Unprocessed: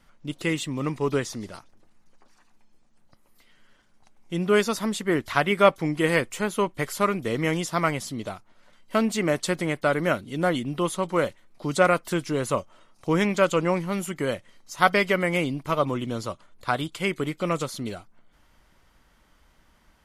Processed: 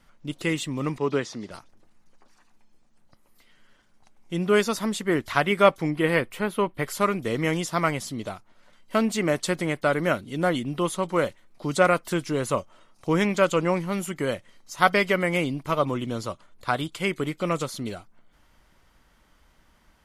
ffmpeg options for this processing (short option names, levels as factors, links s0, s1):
-filter_complex "[0:a]asettb=1/sr,asplit=3[s0][s1][s2];[s0]atrim=end=0.984[s3];[s1]atrim=start=0.98:end=1.51,asetpts=PTS-STARTPTS,afade=t=in:d=0.004:c=qsin,afade=t=out:st=0.526:d=0.004:c=qsin,highpass=140,lowpass=5500[s4];[s2]atrim=start=1.506[s5];[s3][s4]acrossfade=d=0.004:c1=hsin:c2=qsin[s6];[s6][s5]acrossfade=d=0.004:c1=qsin:c2=hsin,asettb=1/sr,asplit=3[s7][s8][s9];[s7]atrim=end=5.904[s10];[s8]atrim=start=5.9:end=6.88,asetpts=PTS-STARTPTS,afade=t=in:d=0.004:c=qsin,afade=t=out:st=0.976:d=0.004:c=qsin,equalizer=f=6800:t=o:w=0.8:g=-13.5[s11];[s9]atrim=start=6.876[s12];[s10][s11]acrossfade=d=0.004:c1=hsin:c2=qsin[s13];[s13][s12]acrossfade=d=0.004:c1=qsin:c2=hsin"